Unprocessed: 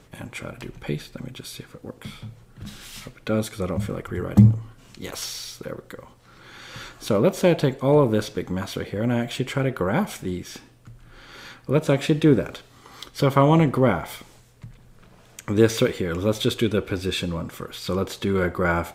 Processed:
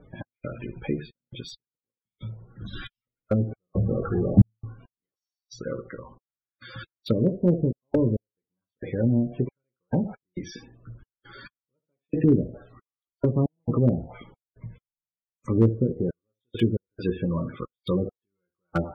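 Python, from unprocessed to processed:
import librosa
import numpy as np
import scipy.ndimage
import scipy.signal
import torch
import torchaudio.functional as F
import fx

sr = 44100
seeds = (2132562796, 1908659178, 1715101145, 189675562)

y = fx.zero_step(x, sr, step_db=-29.0, at=(2.73, 4.5))
y = fx.room_early_taps(y, sr, ms=(17, 71), db=(-6.0, -12.0))
y = fx.step_gate(y, sr, bpm=68, pattern='x.xxx.x...xxx..', floor_db=-60.0, edge_ms=4.5)
y = fx.env_lowpass_down(y, sr, base_hz=310.0, full_db=-18.0)
y = fx.spec_topn(y, sr, count=32)
y = fx.slew_limit(y, sr, full_power_hz=88.0)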